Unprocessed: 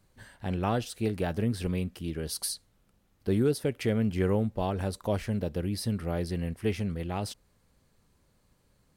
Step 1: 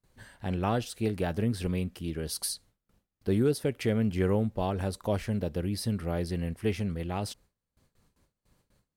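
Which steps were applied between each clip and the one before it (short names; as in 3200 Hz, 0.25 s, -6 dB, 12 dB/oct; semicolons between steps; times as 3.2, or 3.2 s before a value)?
gate with hold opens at -56 dBFS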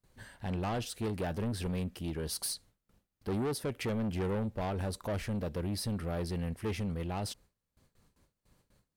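soft clip -29.5 dBFS, distortion -9 dB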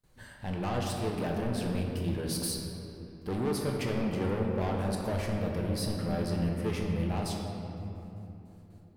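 shoebox room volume 160 m³, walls hard, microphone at 0.47 m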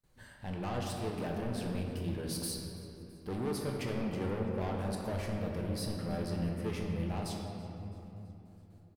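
feedback echo 0.33 s, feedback 54%, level -22.5 dB; gain -4.5 dB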